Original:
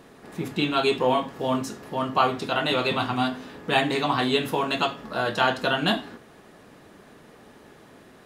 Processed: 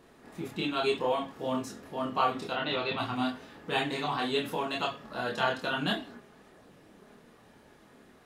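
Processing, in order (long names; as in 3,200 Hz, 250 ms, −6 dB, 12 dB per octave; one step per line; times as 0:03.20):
0:02.53–0:02.98: inverse Chebyshev low-pass filter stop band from 11,000 Hz, stop band 50 dB
multi-voice chorus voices 4, 0.58 Hz, delay 27 ms, depth 2.5 ms
level −4 dB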